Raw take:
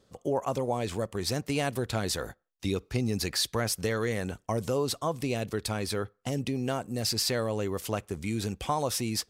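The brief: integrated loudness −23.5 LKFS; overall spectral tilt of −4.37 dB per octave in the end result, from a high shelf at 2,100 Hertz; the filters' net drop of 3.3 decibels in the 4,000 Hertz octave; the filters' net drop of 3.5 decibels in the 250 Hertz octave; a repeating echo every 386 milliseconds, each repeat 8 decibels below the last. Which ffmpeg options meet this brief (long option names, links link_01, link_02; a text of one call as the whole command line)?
ffmpeg -i in.wav -af "equalizer=frequency=250:width_type=o:gain=-4.5,highshelf=frequency=2100:gain=3.5,equalizer=frequency=4000:width_type=o:gain=-8,aecho=1:1:386|772|1158|1544|1930:0.398|0.159|0.0637|0.0255|0.0102,volume=7.5dB" out.wav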